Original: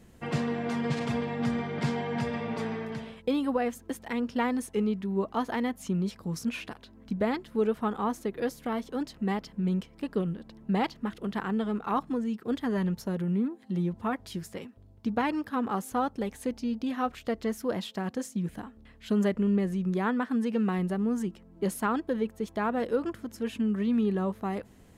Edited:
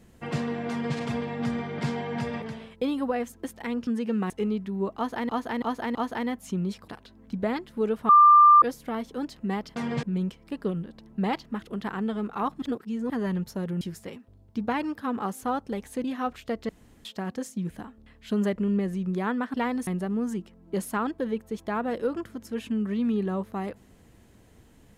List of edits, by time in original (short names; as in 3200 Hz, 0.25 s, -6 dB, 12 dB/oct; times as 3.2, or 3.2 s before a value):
0.69–0.96 copy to 9.54
2.42–2.88 cut
4.33–4.66 swap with 20.33–20.76
5.32–5.65 loop, 4 plays
6.25–6.66 cut
7.87–8.4 bleep 1190 Hz -11 dBFS
12.13–12.61 reverse
13.32–14.3 cut
16.53–16.83 cut
17.48–17.84 room tone